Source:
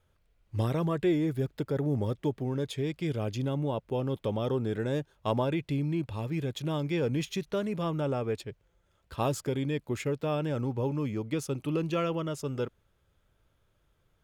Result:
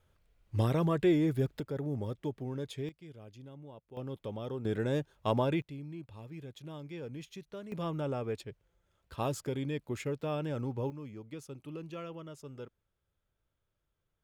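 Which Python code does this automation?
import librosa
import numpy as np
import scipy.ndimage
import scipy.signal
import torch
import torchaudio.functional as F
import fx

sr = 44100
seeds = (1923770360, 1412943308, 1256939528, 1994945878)

y = fx.gain(x, sr, db=fx.steps((0.0, 0.0), (1.6, -6.5), (2.89, -19.0), (3.97, -9.0), (4.65, -1.0), (5.62, -13.5), (7.72, -4.5), (10.9, -13.0)))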